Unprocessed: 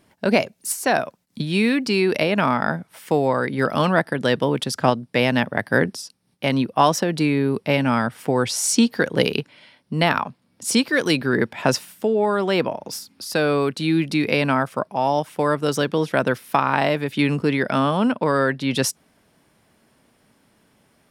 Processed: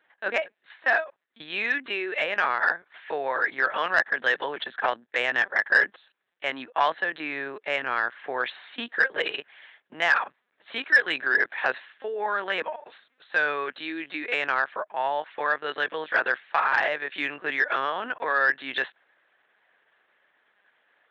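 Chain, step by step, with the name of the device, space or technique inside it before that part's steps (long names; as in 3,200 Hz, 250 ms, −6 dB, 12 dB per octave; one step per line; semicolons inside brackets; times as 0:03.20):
talking toy (linear-prediction vocoder at 8 kHz pitch kept; high-pass filter 640 Hz 12 dB per octave; parametric band 1,700 Hz +12 dB 0.44 octaves; soft clipping −5.5 dBFS, distortion −20 dB)
level −4 dB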